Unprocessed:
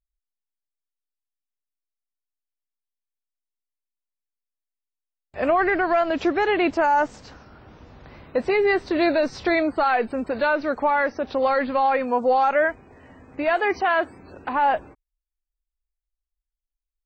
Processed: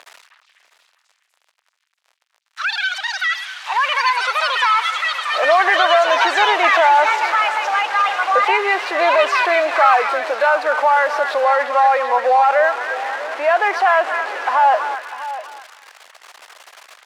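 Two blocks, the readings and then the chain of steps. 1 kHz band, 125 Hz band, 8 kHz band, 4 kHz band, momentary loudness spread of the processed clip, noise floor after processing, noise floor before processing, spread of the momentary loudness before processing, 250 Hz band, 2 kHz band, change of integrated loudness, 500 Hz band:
+9.0 dB, under -25 dB, no reading, +15.5 dB, 9 LU, -68 dBFS, under -85 dBFS, 7 LU, -10.5 dB, +10.0 dB, +6.0 dB, +4.5 dB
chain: jump at every zero crossing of -26.5 dBFS; high-pass 600 Hz 24 dB/octave; treble shelf 2.8 kHz -11 dB; in parallel at -2 dB: peak limiter -19.5 dBFS, peak gain reduction 7.5 dB; on the sum: repeats whose band climbs or falls 246 ms, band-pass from 1.4 kHz, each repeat 0.7 oct, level -5 dB; ever faster or slower copies 99 ms, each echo +7 st, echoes 2; distance through air 52 m; on a send: delay 648 ms -14 dB; on the sum: trim +4 dB

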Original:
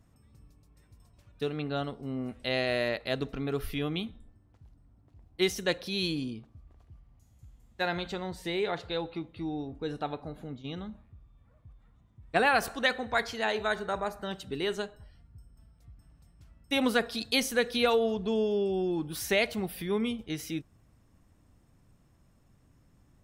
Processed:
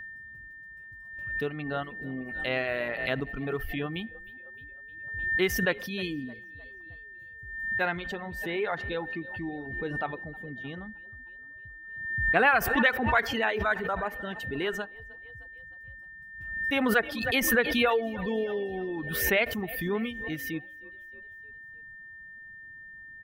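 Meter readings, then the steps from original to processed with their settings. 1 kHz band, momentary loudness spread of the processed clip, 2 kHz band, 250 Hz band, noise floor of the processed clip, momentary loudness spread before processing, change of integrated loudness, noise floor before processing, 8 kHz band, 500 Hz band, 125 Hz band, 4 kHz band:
+2.5 dB, 21 LU, +6.5 dB, +0.5 dB, -47 dBFS, 12 LU, +2.0 dB, -64 dBFS, +1.5 dB, 0.0 dB, +0.5 dB, -2.5 dB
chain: high-order bell 6.4 kHz -12.5 dB; frequency-shifting echo 308 ms, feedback 48%, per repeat +35 Hz, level -16 dB; dynamic bell 1.6 kHz, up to +5 dB, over -42 dBFS, Q 1.1; whistle 1.8 kHz -39 dBFS; reverb removal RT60 1.2 s; swell ahead of each attack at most 48 dB/s

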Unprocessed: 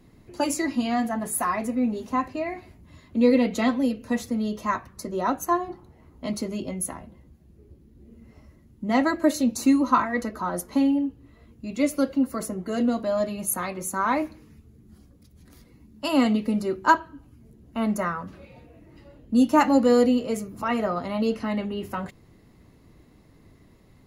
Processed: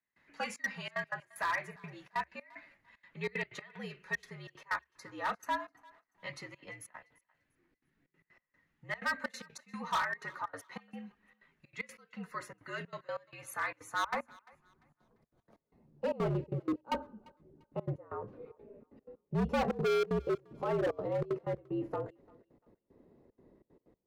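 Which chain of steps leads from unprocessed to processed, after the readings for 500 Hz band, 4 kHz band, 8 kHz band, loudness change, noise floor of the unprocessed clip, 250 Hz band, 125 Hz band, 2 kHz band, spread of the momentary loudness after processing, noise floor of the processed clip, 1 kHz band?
-10.5 dB, -9.5 dB, -18.5 dB, -12.5 dB, -55 dBFS, -19.5 dB, -3.5 dB, -5.5 dB, 17 LU, -85 dBFS, -12.0 dB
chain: trance gate "..xxxxx.xxx.x.x" 188 bpm -24 dB; band-pass sweep 1.9 kHz -> 510 Hz, 13.47–16.23 s; hard clipper -30 dBFS, distortion -4 dB; frequency shift -69 Hz; thinning echo 345 ms, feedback 29%, high-pass 590 Hz, level -23.5 dB; trim +2.5 dB

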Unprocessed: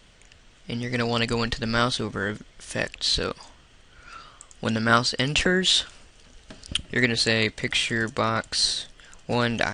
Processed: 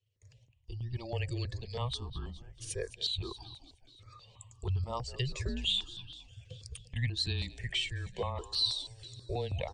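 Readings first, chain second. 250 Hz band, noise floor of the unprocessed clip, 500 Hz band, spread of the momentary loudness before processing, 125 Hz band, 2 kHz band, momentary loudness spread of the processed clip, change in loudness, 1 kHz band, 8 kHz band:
-18.0 dB, -54 dBFS, -13.0 dB, 12 LU, -4.5 dB, -19.0 dB, 18 LU, -11.5 dB, -16.0 dB, -15.0 dB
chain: spectral contrast enhancement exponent 1.6; gate with hold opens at -43 dBFS; in parallel at -0.5 dB: compression, threshold -35 dBFS, peak gain reduction 19.5 dB; on the sum: static phaser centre 420 Hz, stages 6; frequency shift -130 Hz; on a send: frequency-shifting echo 211 ms, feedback 59%, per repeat -33 Hz, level -16.5 dB; on the sum: stepped phaser 6.2 Hz 230–2000 Hz; trim -6 dB

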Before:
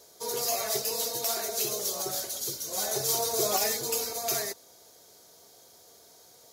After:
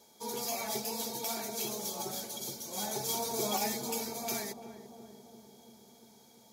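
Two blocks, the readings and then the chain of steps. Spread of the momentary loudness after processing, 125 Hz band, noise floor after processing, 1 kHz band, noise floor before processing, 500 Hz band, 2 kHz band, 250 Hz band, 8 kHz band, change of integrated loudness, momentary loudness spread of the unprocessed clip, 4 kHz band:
18 LU, -2.0 dB, -60 dBFS, -2.5 dB, -56 dBFS, -6.0 dB, -4.5 dB, +3.5 dB, -7.5 dB, -6.5 dB, 6 LU, -6.5 dB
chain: small resonant body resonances 220/860/2300/3300 Hz, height 16 dB, ringing for 60 ms; on a send: filtered feedback delay 343 ms, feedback 74%, low-pass 820 Hz, level -9.5 dB; on the sum: trim -7.5 dB

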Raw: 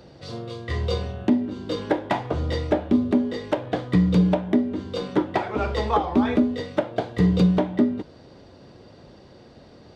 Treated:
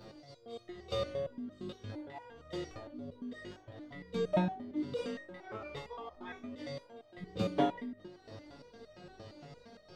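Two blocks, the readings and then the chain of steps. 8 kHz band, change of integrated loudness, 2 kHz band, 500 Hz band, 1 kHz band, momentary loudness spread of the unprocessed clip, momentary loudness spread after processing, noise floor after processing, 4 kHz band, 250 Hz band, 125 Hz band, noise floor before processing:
no reading, -16.0 dB, -14.0 dB, -12.5 dB, -14.0 dB, 10 LU, 21 LU, -61 dBFS, -11.5 dB, -18.5 dB, -19.0 dB, -49 dBFS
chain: slow attack 496 ms; flutter echo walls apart 3.4 m, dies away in 0.38 s; resonator arpeggio 8.7 Hz 110–620 Hz; trim +7 dB

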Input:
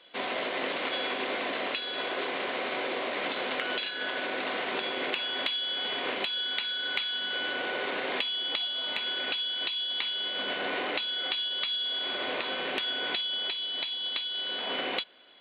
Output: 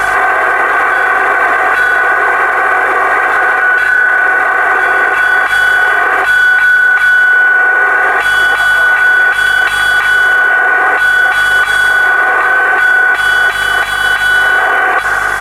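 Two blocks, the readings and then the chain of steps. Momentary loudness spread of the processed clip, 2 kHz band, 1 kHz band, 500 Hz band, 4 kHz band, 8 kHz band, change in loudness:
3 LU, +29.5 dB, +25.5 dB, +15.5 dB, +5.0 dB, no reading, +22.0 dB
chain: one-bit delta coder 64 kbps, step -36.5 dBFS; high-pass 720 Hz 12 dB/octave; resonant high shelf 2.2 kHz -14 dB, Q 3; comb 2.6 ms, depth 79%; pre-echo 208 ms -14 dB; hum 50 Hz, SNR 34 dB; compression, threshold -31 dBFS, peak gain reduction 9 dB; loudness maximiser +31.5 dB; trim -1 dB

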